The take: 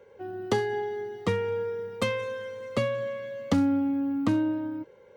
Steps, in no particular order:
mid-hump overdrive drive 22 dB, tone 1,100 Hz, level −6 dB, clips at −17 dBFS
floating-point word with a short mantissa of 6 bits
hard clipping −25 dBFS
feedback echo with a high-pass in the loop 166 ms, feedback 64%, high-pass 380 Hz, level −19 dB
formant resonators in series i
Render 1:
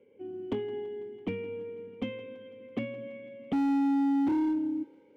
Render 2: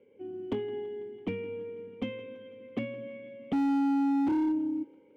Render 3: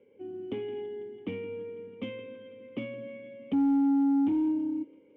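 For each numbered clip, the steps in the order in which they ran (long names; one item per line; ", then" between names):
formant resonators in series, then floating-point word with a short mantissa, then mid-hump overdrive, then hard clipping, then feedback echo with a high-pass in the loop
formant resonators in series, then floating-point word with a short mantissa, then mid-hump overdrive, then feedback echo with a high-pass in the loop, then hard clipping
feedback echo with a high-pass in the loop, then hard clipping, then formant resonators in series, then floating-point word with a short mantissa, then mid-hump overdrive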